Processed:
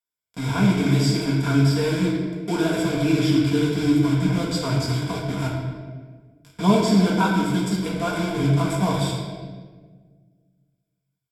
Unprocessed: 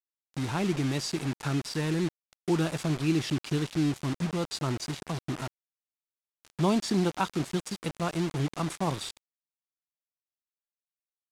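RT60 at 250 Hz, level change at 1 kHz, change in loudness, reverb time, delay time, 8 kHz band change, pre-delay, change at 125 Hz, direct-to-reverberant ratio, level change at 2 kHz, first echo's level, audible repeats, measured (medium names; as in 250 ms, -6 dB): 2.1 s, +7.5 dB, +8.5 dB, 1.6 s, no echo, +4.5 dB, 4 ms, +9.5 dB, -5.0 dB, +9.0 dB, no echo, no echo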